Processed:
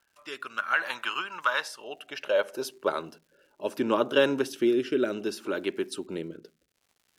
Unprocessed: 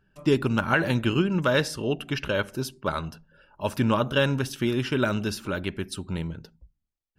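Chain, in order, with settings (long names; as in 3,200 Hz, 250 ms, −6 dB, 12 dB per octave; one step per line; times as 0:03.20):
high-pass filter sweep 1,100 Hz → 350 Hz, 0:01.49–0:03.06
surface crackle 220 per second −48 dBFS
rotating-speaker cabinet horn 0.65 Hz
level −1.5 dB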